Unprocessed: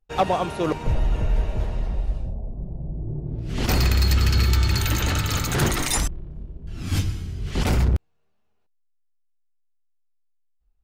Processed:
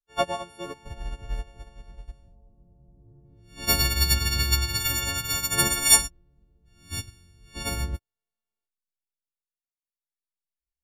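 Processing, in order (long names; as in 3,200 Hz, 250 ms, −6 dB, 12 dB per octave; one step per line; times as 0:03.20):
every partial snapped to a pitch grid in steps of 4 semitones
expander for the loud parts 2.5 to 1, over −27 dBFS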